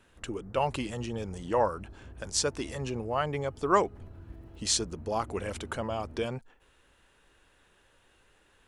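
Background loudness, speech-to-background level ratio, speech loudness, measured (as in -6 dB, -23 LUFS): -49.0 LUFS, 17.5 dB, -31.5 LUFS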